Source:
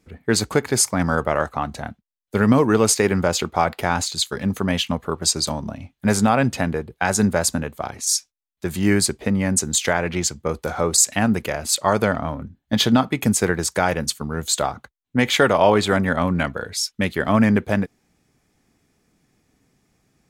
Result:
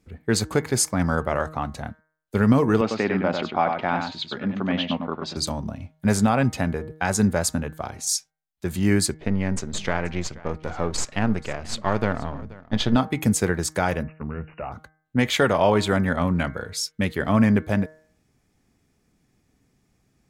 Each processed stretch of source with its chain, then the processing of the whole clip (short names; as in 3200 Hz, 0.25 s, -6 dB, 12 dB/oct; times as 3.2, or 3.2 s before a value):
2.81–5.37 speaker cabinet 200–3700 Hz, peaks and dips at 260 Hz +4 dB, 430 Hz -5 dB, 710 Hz +3 dB + echo 99 ms -5.5 dB
9.14–12.96 half-wave gain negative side -7 dB + LPF 5000 Hz + echo 0.481 s -20.5 dB
14.03–14.72 compressor 2:1, threshold -24 dBFS + hard clip -21.5 dBFS + brick-wall FIR low-pass 2900 Hz
whole clip: low shelf 180 Hz +6 dB; de-hum 156.4 Hz, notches 14; gain -4 dB